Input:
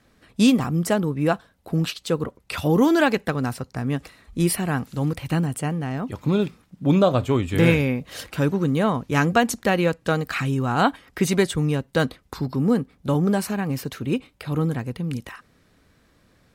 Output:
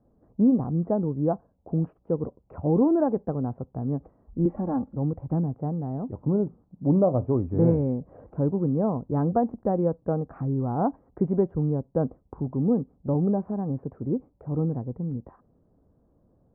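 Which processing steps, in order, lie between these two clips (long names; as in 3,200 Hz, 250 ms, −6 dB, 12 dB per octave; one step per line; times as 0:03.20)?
inverse Chebyshev low-pass filter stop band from 3,600 Hz, stop band 70 dB
0:04.45–0:04.96: comb filter 3.6 ms, depth 99%
level −3 dB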